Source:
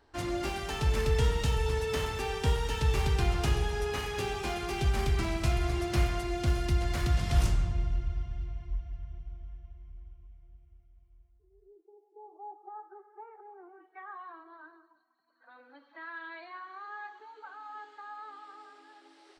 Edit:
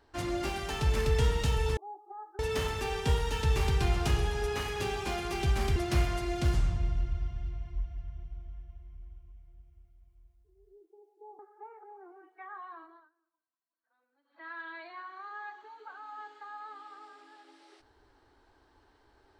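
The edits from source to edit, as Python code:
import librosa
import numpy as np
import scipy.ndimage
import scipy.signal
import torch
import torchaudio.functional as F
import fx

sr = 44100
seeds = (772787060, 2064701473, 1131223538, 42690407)

y = fx.edit(x, sr, fx.cut(start_s=5.14, length_s=0.64),
    fx.cut(start_s=6.56, length_s=0.93),
    fx.move(start_s=12.34, length_s=0.62, to_s=1.77),
    fx.fade_down_up(start_s=14.41, length_s=1.65, db=-23.0, fade_s=0.25), tone=tone)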